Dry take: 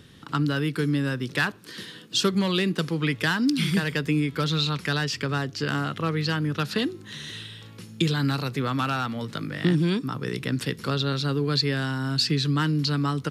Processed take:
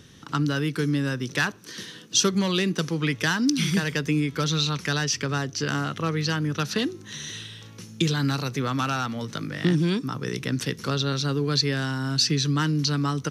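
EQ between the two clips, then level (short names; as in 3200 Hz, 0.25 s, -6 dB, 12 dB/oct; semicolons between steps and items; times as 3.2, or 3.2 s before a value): bell 6000 Hz +14.5 dB 0.2 oct; 0.0 dB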